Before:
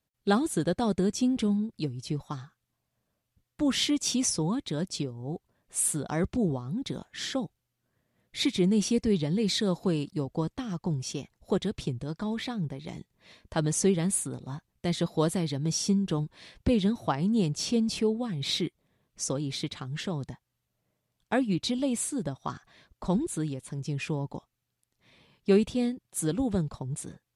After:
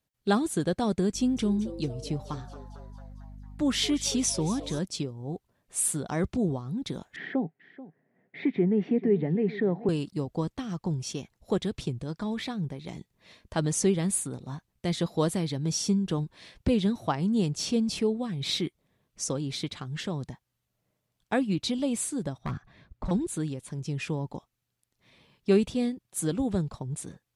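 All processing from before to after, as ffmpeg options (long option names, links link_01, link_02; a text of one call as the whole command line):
ffmpeg -i in.wav -filter_complex "[0:a]asettb=1/sr,asplit=3[link_01][link_02][link_03];[link_01]atrim=end=1.144[link_04];[link_02]atrim=start=1.14:end=4.79,asetpts=PTS-STARTPTS,afade=type=in:duration=0.004:curve=qsin,afade=type=out:start_time=3.646:duration=0.004:curve=qsin,asplit=7[link_05][link_06][link_07][link_08][link_09][link_10][link_11];[link_06]adelay=225,afreqshift=130,volume=-15.5dB[link_12];[link_07]adelay=450,afreqshift=260,volume=-20.1dB[link_13];[link_08]adelay=675,afreqshift=390,volume=-24.7dB[link_14];[link_09]adelay=900,afreqshift=520,volume=-29.2dB[link_15];[link_10]adelay=1125,afreqshift=650,volume=-33.8dB[link_16];[link_11]adelay=1350,afreqshift=780,volume=-38.4dB[link_17];[link_05][link_12][link_13][link_14][link_15][link_16][link_17]amix=inputs=7:normalize=0,atrim=end_sample=160965,aeval=exprs='val(0)+0.00708*(sin(2*PI*50*n/s)+sin(2*PI*2*50*n/s)/2+sin(2*PI*3*50*n/s)/3+sin(2*PI*4*50*n/s)/4+sin(2*PI*5*50*n/s)/5)':channel_layout=same[link_18];[link_03]atrim=start=4.786[link_19];[link_04][link_18]acrossfade=duration=0.004:curve1=hsin:curve2=qsin[link_20];[link_20][link_19]acrossfade=duration=0.004:curve1=qsin:curve2=hsin,asettb=1/sr,asplit=3[link_21][link_22][link_23];[link_21]atrim=end=7.164[link_24];[link_22]atrim=start=7.16:end=9.89,asetpts=PTS-STARTPTS,afade=type=in:duration=0.004:curve=qsin,afade=type=out:start_time=2.726:duration=0.004:curve=qsin,acompressor=threshold=-34dB:ratio=1.5:attack=3.2:release=140:knee=1:detection=peak,highpass=frequency=140:width=0.5412,highpass=frequency=140:width=1.3066,equalizer=frequency=160:width_type=q:width=4:gain=7,equalizer=frequency=260:width_type=q:width=4:gain=7,equalizer=frequency=410:width_type=q:width=4:gain=10,equalizer=frequency=730:width_type=q:width=4:gain=8,equalizer=frequency=1200:width_type=q:width=4:gain=-5,equalizer=frequency=1900:width_type=q:width=4:gain=8,lowpass=frequency=2200:width=0.5412,lowpass=frequency=2200:width=1.3066,aecho=1:1:435:0.141,atrim=end_sample=120393[link_25];[link_23]atrim=start=9.886[link_26];[link_24][link_25]acrossfade=duration=0.004:curve1=hsin:curve2=qsin[link_27];[link_27][link_26]acrossfade=duration=0.004:curve1=qsin:curve2=hsin,asettb=1/sr,asplit=3[link_28][link_29][link_30];[link_28]atrim=end=22.384[link_31];[link_29]atrim=start=22.38:end=23.11,asetpts=PTS-STARTPTS,afade=type=in:duration=0.004:curve=qsin,afade=type=out:start_time=0.726:duration=0.004:curve=qsin,bass=frequency=250:gain=11,treble=frequency=4000:gain=-11,bandreject=frequency=3000:width=20,volume=27.5dB,asoftclip=hard,volume=-27.5dB[link_32];[link_30]atrim=start=23.106[link_33];[link_31][link_32]acrossfade=duration=0.004:curve1=hsin:curve2=qsin[link_34];[link_34][link_33]acrossfade=duration=0.004:curve1=qsin:curve2=hsin" out.wav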